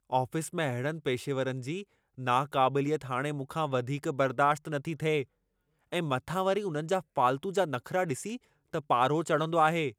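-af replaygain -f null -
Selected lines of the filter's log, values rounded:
track_gain = +9.4 dB
track_peak = 0.187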